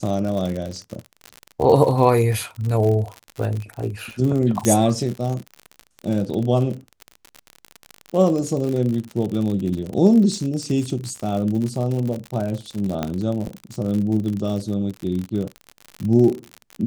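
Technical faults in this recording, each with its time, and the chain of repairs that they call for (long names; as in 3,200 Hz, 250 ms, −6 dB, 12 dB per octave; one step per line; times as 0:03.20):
surface crackle 57 per second −25 dBFS
0:04.65: click −7 dBFS
0:13.03: click −10 dBFS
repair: click removal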